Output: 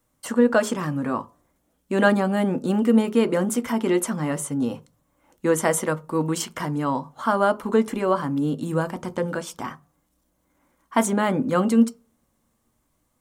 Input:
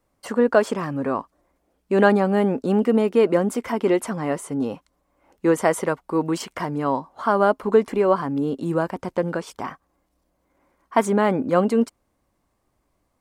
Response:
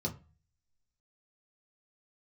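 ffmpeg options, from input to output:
-filter_complex "[0:a]highshelf=f=3.7k:g=11.5,asplit=2[a][b];[1:a]atrim=start_sample=2205,lowshelf=f=180:g=-7[c];[b][c]afir=irnorm=-1:irlink=0,volume=-11dB[d];[a][d]amix=inputs=2:normalize=0,volume=-2dB"

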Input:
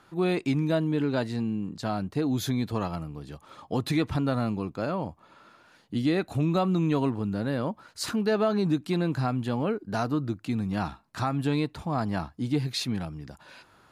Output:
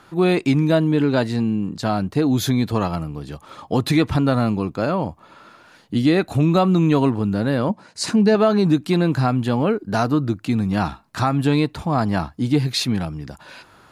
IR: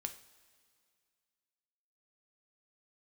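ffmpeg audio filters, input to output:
-filter_complex "[0:a]asettb=1/sr,asplit=3[a][b][c];[a]atrim=end=7.694[d];[b]atrim=start=7.69:end=8.35,asetpts=PTS-STARTPTS,afade=t=in:d=0.004:c=qsin,afade=t=out:st=0.656:d=0.004:c=qsin,highpass=110,equalizer=f=190:t=q:w=4:g=7,equalizer=f=1.3k:t=q:w=4:g=-10,equalizer=f=3.3k:t=q:w=4:g=-6,lowpass=f=9.8k:w=0.5412,lowpass=f=9.8k:w=1.3066[e];[c]atrim=start=8.346[f];[d][e]acrossfade=d=0.004:c1=hsin:c2=qsin[g];[g][f]acrossfade=d=0.004:c1=qsin:c2=hsin,volume=8.5dB"

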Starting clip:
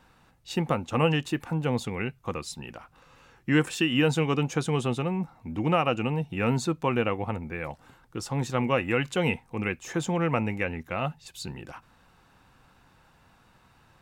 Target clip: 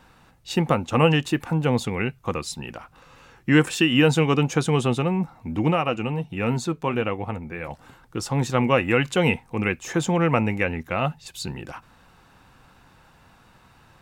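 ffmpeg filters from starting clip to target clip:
-filter_complex "[0:a]asplit=3[a][b][c];[a]afade=t=out:st=5.7:d=0.02[d];[b]flanger=delay=0.3:depth=5.5:regen=-76:speed=1.4:shape=sinusoidal,afade=t=in:st=5.7:d=0.02,afade=t=out:st=7.7:d=0.02[e];[c]afade=t=in:st=7.7:d=0.02[f];[d][e][f]amix=inputs=3:normalize=0,volume=5.5dB"

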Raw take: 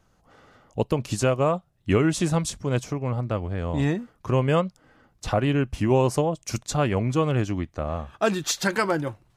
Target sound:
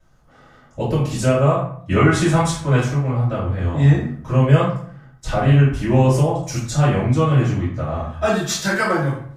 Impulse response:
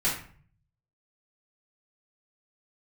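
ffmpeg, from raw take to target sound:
-filter_complex "[0:a]asettb=1/sr,asplit=3[a][b][c];[a]atrim=end=1.964[d];[b]atrim=start=1.96:end=2.92,asetpts=PTS-STARTPTS,afade=t=in:d=0.004:c=qsin,afade=t=out:st=0.956:d=0.004:c=qsin,equalizer=f=1.2k:t=o:w=2.4:g=7[e];[c]atrim=start=2.916[f];[d][e]acrossfade=d=0.004:c1=hsin:c2=qsin[g];[g][f]acrossfade=d=0.004:c1=qsin:c2=hsin[h];[1:a]atrim=start_sample=2205,asetrate=36603,aresample=44100[i];[h][i]afir=irnorm=-1:irlink=0,volume=-7dB"

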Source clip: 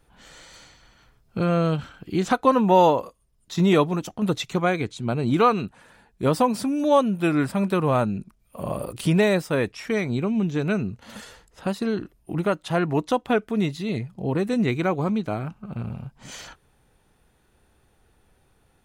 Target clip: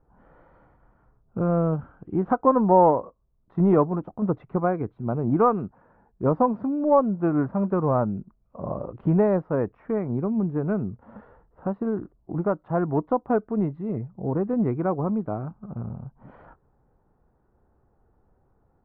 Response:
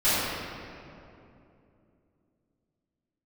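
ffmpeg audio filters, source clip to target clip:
-af "aeval=exprs='0.531*(cos(1*acos(clip(val(0)/0.531,-1,1)))-cos(1*PI/2))+0.015*(cos(7*acos(clip(val(0)/0.531,-1,1)))-cos(7*PI/2))':c=same,lowpass=f=1.2k:w=0.5412,lowpass=f=1.2k:w=1.3066"

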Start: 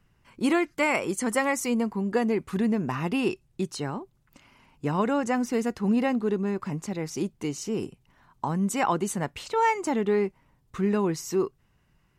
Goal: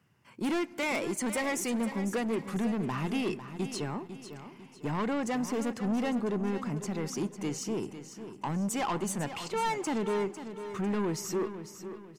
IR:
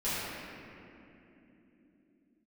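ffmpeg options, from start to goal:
-filter_complex "[0:a]highpass=f=100:w=0.5412,highpass=f=100:w=1.3066,bandreject=f=3.9k:w=16,asoftclip=type=tanh:threshold=-26dB,aecho=1:1:500|1000|1500|2000:0.282|0.11|0.0429|0.0167,asplit=2[a][b];[1:a]atrim=start_sample=2205[c];[b][c]afir=irnorm=-1:irlink=0,volume=-29.5dB[d];[a][d]amix=inputs=2:normalize=0,volume=-1dB"

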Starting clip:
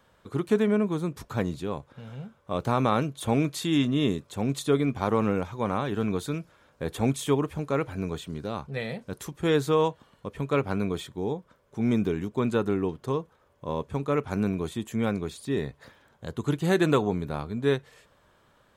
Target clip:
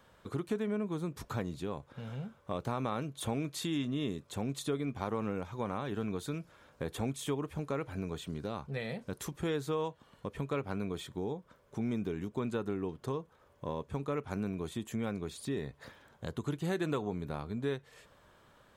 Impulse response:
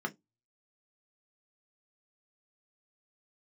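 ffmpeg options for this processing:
-af "acompressor=threshold=-36dB:ratio=2.5"

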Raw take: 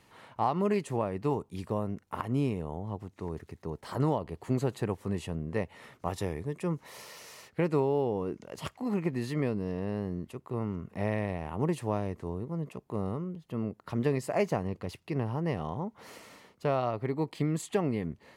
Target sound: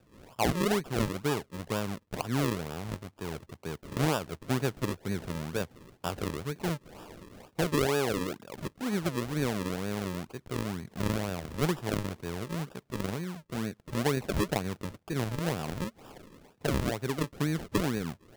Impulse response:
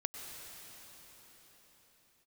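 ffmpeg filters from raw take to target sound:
-af "highpass=79,acrusher=samples=41:mix=1:aa=0.000001:lfo=1:lforange=41:lforate=2.1"

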